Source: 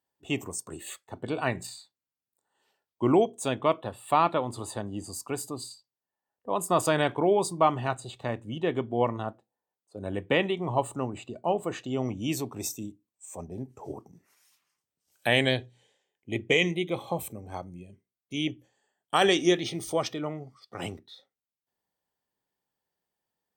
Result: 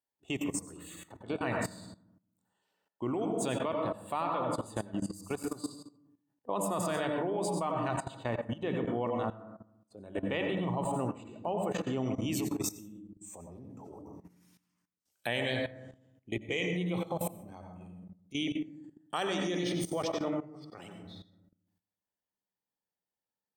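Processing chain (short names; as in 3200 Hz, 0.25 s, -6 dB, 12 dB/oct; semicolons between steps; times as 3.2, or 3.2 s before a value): notches 50/100/150 Hz; on a send at -4 dB: reverb RT60 0.75 s, pre-delay 86 ms; on the sum: level quantiser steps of 16 dB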